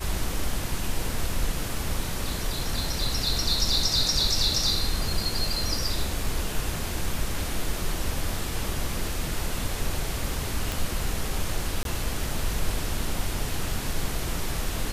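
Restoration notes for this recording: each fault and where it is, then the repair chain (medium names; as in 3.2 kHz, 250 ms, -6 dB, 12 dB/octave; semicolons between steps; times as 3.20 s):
10.72 s: pop
11.83–11.85 s: dropout 22 ms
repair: de-click; interpolate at 11.83 s, 22 ms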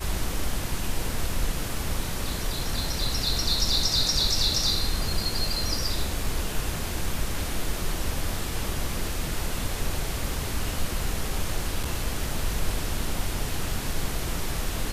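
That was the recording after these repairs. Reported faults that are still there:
nothing left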